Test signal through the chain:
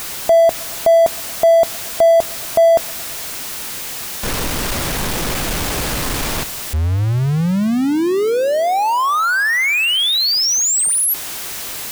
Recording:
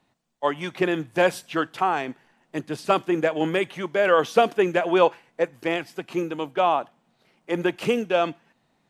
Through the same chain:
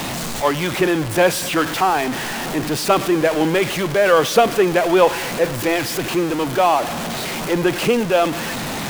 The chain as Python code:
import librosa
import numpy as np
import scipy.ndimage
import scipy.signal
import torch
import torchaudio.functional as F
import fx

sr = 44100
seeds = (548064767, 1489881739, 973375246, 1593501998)

y = x + 0.5 * 10.0 ** (-22.5 / 20.0) * np.sign(x)
y = fx.echo_wet_lowpass(y, sr, ms=112, feedback_pct=74, hz=2000.0, wet_db=-22.5)
y = y * 10.0 ** (3.0 / 20.0)